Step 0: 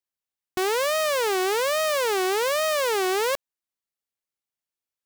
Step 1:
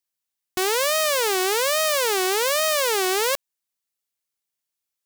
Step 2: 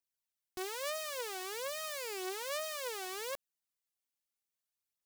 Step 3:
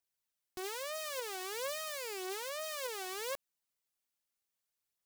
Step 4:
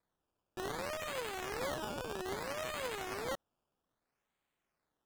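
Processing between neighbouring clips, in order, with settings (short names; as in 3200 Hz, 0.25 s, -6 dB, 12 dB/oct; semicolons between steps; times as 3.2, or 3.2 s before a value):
high shelf 2800 Hz +8 dB
limiter -19.5 dBFS, peak gain reduction 11 dB; phaser 0.6 Hz, delay 3.6 ms, feedback 43%; gain -8.5 dB
limiter -30 dBFS, peak gain reduction 7 dB; gain +2 dB
decimation with a swept rate 15×, swing 100% 0.62 Hz; Doppler distortion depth 0.13 ms; gain +1 dB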